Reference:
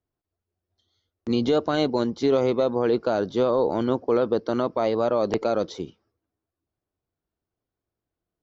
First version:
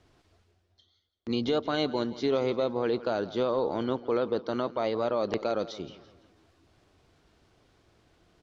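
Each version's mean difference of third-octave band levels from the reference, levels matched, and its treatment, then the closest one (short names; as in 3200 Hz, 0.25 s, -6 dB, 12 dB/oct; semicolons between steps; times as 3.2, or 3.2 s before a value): 2.5 dB: LPF 4300 Hz 12 dB/oct; high shelf 2000 Hz +8.5 dB; reverse; upward compressor, threshold -34 dBFS; reverse; feedback echo 0.169 s, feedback 43%, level -17 dB; gain -6.5 dB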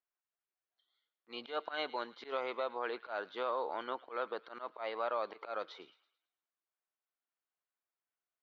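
8.5 dB: HPF 1400 Hz 12 dB/oct; auto swell 0.111 s; air absorption 460 m; on a send: thin delay 0.11 s, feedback 42%, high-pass 1800 Hz, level -16 dB; on the sum: gain +2.5 dB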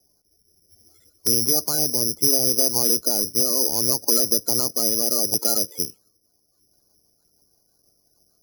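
15.0 dB: bin magnitudes rounded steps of 30 dB; rotary speaker horn 0.65 Hz, later 6.3 Hz, at 5.85; careless resampling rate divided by 8×, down filtered, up zero stuff; three-band squash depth 70%; gain -5 dB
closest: first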